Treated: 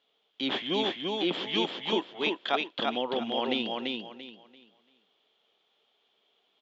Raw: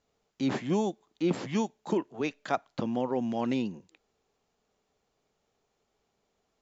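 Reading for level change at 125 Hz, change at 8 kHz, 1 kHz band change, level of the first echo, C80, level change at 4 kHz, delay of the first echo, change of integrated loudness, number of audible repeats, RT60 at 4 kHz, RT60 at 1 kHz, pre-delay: -9.5 dB, n/a, +2.5 dB, -3.0 dB, none, +16.5 dB, 0.34 s, +1.5 dB, 3, none, none, none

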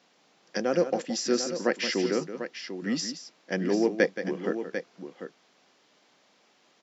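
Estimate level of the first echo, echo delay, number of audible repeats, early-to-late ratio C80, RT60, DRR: -11.0 dB, 0.174 s, 2, none, none, none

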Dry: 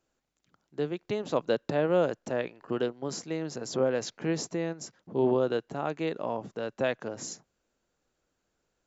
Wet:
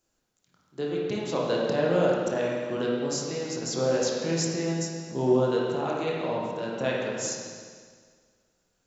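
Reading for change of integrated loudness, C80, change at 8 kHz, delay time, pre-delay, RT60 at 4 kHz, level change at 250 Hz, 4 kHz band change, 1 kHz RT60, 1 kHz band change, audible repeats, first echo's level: +3.5 dB, 1.0 dB, n/a, none, 20 ms, 1.8 s, +3.5 dB, +6.0 dB, 1.8 s, +3.0 dB, none, none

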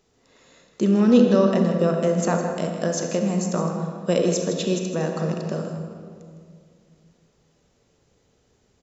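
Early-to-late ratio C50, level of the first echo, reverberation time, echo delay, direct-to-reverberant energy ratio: 3.5 dB, -10.0 dB, 2.2 s, 0.159 s, 2.5 dB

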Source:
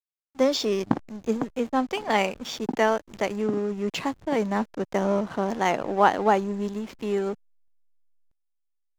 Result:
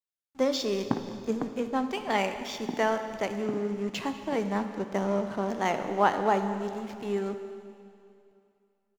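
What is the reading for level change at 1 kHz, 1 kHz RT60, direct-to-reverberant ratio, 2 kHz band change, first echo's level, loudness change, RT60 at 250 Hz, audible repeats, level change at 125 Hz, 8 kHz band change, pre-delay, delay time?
-4.0 dB, 2.6 s, 7.5 dB, -4.0 dB, -20.0 dB, -4.0 dB, 2.6 s, 1, -3.0 dB, -4.0 dB, 12 ms, 0.202 s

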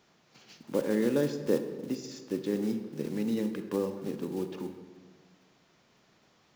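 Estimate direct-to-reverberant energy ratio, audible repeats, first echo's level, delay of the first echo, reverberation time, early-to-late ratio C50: 8.0 dB, none, none, none, 1.5 s, 9.0 dB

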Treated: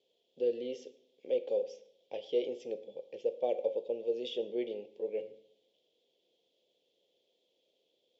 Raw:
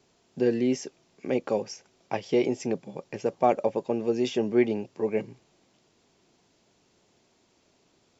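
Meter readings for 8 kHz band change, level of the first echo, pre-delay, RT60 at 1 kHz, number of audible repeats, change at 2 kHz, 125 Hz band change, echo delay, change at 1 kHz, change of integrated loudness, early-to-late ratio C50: n/a, none, 12 ms, 0.65 s, none, -17.0 dB, under -25 dB, none, -18.0 dB, -8.5 dB, 14.5 dB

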